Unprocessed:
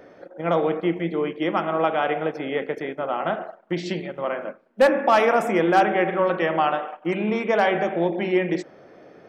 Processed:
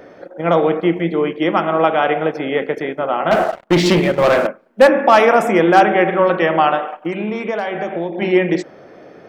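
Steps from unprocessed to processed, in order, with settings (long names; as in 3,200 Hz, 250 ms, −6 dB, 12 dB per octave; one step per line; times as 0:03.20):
0:03.31–0:04.47: leveller curve on the samples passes 3
0:06.98–0:08.22: downward compressor 6 to 1, threshold −26 dBFS, peak gain reduction 11 dB
level +7 dB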